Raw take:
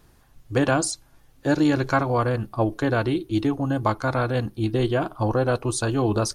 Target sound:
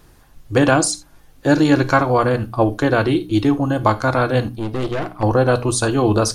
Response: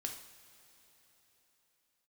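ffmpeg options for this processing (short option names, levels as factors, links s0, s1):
-filter_complex "[0:a]bandreject=f=60:t=h:w=6,bandreject=f=120:t=h:w=6,bandreject=f=180:t=h:w=6,bandreject=f=240:t=h:w=6,bandreject=f=300:t=h:w=6,asettb=1/sr,asplit=3[s0][s1][s2];[s0]atrim=end=4.564[s3];[s1]atrim=start=4.56:end=5.23,asetpts=PTS-STARTPTS,afade=t=in:d=0.004:c=qsin,afade=t=out:st=0.666:d=0.004:c=qsin,aeval=exprs='(tanh(20*val(0)+0.75)-tanh(0.75))/20':c=same[s4];[s2]atrim=start=5.226[s5];[s3][s4]acrossfade=d=0.004:c1=hsin:c2=qsin[s6];[s6][s5]acrossfade=d=0.004:c1=qsin:c2=hsin,asplit=2[s7][s8];[1:a]atrim=start_sample=2205,atrim=end_sample=3969[s9];[s8][s9]afir=irnorm=-1:irlink=0,volume=0.75[s10];[s7][s10]amix=inputs=2:normalize=0,volume=1.41"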